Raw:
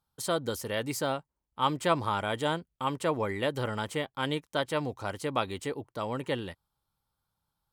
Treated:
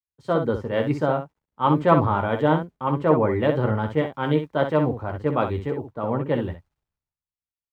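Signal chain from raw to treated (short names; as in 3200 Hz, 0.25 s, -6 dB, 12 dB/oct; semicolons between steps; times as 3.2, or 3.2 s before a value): Bessel low-pass 1200 Hz, order 2; low shelf 150 Hz +4.5 dB; in parallel at +1 dB: limiter -26 dBFS, peak gain reduction 11 dB; on the sum: bit-crush 12-bit; on a send: early reflections 13 ms -8.5 dB, 64 ms -7 dB; on the sum: three-band expander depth 100%; gain +3.5 dB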